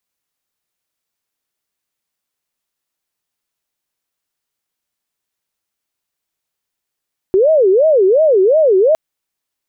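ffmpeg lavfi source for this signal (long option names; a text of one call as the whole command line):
ffmpeg -f lavfi -i "aevalsrc='0.422*sin(2*PI*(505.5*t-134.5/(2*PI*2.8)*sin(2*PI*2.8*t)))':duration=1.61:sample_rate=44100" out.wav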